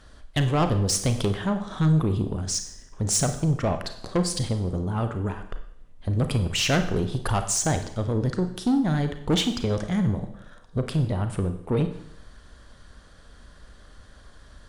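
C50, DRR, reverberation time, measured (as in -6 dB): 10.0 dB, 7.5 dB, 0.70 s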